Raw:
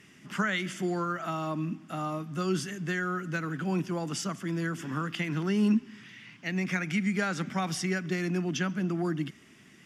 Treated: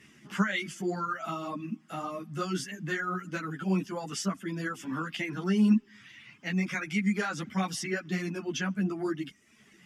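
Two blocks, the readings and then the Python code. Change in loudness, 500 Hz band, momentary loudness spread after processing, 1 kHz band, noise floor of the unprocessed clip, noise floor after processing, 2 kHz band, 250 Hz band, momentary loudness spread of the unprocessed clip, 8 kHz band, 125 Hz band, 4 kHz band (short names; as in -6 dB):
-0.5 dB, -2.0 dB, 9 LU, -0.5 dB, -56 dBFS, -60 dBFS, -1.0 dB, 0.0 dB, 6 LU, -0.5 dB, -2.5 dB, -0.5 dB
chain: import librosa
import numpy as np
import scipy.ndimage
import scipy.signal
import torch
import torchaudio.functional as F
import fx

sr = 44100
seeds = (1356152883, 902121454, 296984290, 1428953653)

y = fx.dereverb_blind(x, sr, rt60_s=0.8)
y = fx.ensemble(y, sr)
y = y * librosa.db_to_amplitude(3.0)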